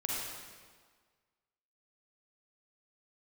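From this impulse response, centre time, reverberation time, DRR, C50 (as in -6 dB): 112 ms, 1.6 s, -4.5 dB, -3.0 dB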